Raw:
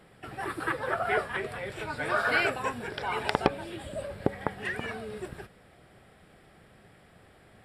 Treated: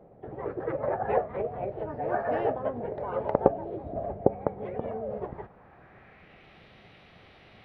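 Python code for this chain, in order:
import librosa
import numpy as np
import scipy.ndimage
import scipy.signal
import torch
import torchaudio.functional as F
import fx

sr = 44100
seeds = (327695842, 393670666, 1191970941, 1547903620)

y = fx.filter_sweep_lowpass(x, sr, from_hz=510.0, to_hz=2900.0, start_s=4.96, end_s=6.6, q=1.9)
y = fx.formant_shift(y, sr, semitones=3)
y = F.gain(torch.from_numpy(y), 1.5).numpy()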